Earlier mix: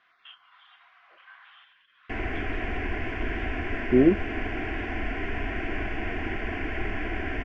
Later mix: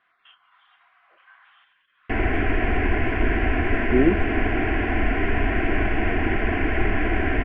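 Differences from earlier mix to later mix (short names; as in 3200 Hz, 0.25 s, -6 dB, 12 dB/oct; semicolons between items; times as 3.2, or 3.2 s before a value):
background +9.5 dB; master: add air absorption 270 m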